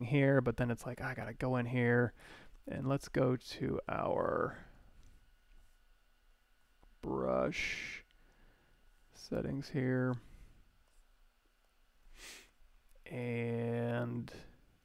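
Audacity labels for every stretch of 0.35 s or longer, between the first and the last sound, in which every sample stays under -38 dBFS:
2.090000	2.680000	silence
4.510000	7.030000	silence
7.970000	9.320000	silence
10.160000	13.060000	silence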